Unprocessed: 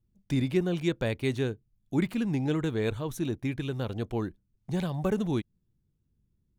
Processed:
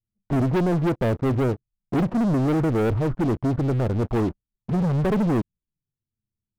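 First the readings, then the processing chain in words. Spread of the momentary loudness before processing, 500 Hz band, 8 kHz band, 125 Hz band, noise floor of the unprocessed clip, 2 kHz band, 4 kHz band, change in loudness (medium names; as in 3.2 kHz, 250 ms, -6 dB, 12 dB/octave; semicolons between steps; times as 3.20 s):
6 LU, +6.5 dB, no reading, +8.5 dB, -75 dBFS, +2.5 dB, -2.5 dB, +7.5 dB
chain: touch-sensitive flanger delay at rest 9.6 ms, full sweep at -27 dBFS; brick-wall FIR low-pass 1.5 kHz; waveshaping leveller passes 5; trim -2.5 dB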